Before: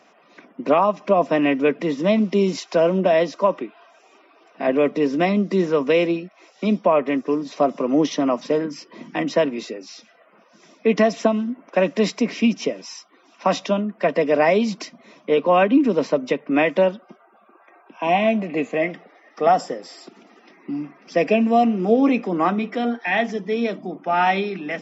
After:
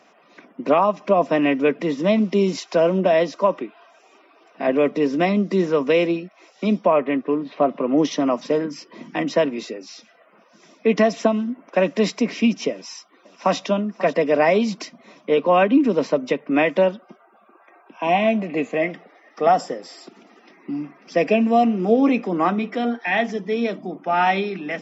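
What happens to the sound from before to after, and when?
6.91–7.98 LPF 3400 Hz 24 dB/oct
12.71–13.59 echo throw 0.54 s, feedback 30%, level -15.5 dB

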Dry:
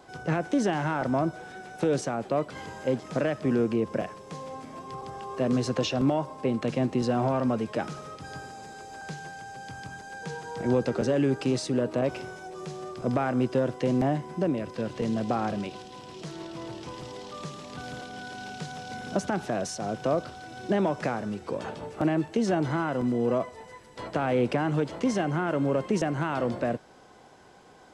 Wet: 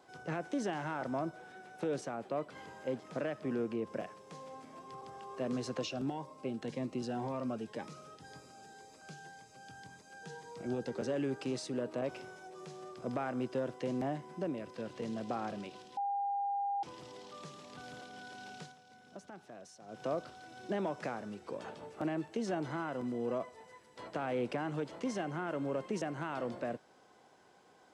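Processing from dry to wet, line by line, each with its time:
1.3–3.87 bell 6900 Hz -3.5 dB 1.6 oct
5.82–10.98 cascading phaser rising 1.9 Hz
15.97–16.83 bleep 803 Hz -22.5 dBFS
18.61–20.02 dip -12 dB, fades 0.15 s
whole clip: HPF 190 Hz 6 dB/oct; gain -9 dB

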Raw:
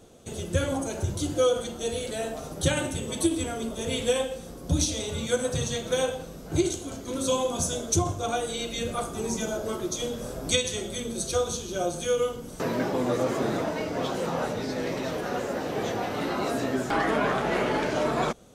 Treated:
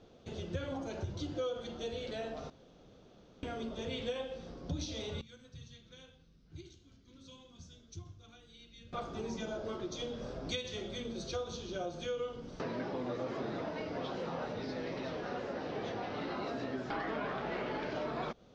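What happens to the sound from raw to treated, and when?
2.5–3.43 room tone
5.21–8.93 passive tone stack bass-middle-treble 6-0-2
whole clip: steep low-pass 5300 Hz 36 dB/oct; compressor 2.5:1, threshold -31 dBFS; gain -6 dB

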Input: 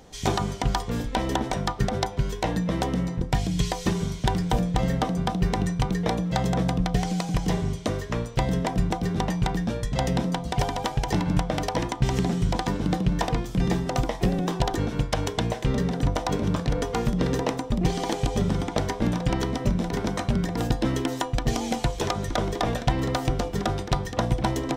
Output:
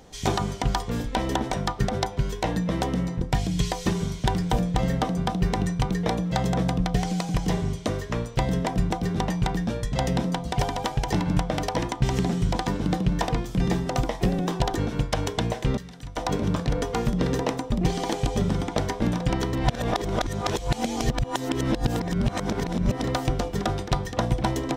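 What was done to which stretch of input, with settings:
15.77–16.17 passive tone stack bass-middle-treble 5-5-5
19.53–23.04 reverse

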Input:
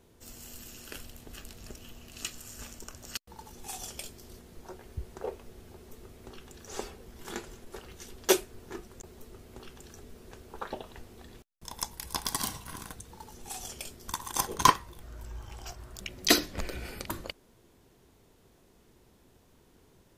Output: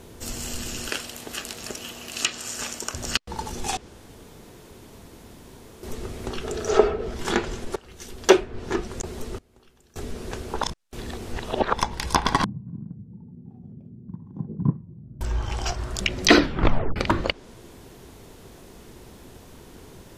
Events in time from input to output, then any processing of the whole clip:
0.9–2.94 HPF 440 Hz 6 dB/oct
3.77–5.83 room tone
6.43–7.14 small resonant body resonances 430/640/1300 Hz, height 14 dB -> 11 dB
7.76–8.79 fade in, from -21.5 dB
9.38–9.96 flipped gate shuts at -46 dBFS, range -25 dB
10.62–11.73 reverse
12.44–15.21 Butterworth band-pass 160 Hz, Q 1.6
16.39 tape stop 0.57 s
whole clip: treble ducked by the level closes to 2400 Hz, closed at -32.5 dBFS; maximiser +17 dB; gain -1 dB

